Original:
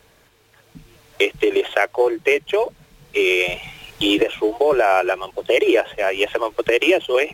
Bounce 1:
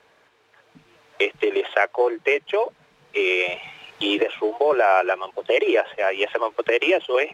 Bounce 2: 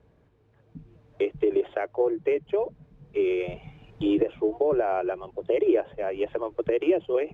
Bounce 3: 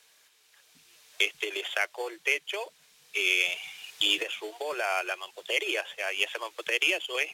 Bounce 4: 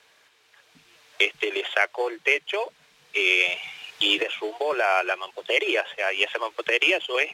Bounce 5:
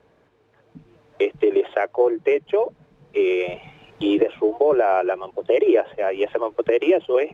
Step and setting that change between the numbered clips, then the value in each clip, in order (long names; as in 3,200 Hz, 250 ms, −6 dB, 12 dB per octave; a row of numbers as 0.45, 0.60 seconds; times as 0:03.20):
resonant band-pass, frequency: 1,100, 120, 7,300, 2,900, 340 Hertz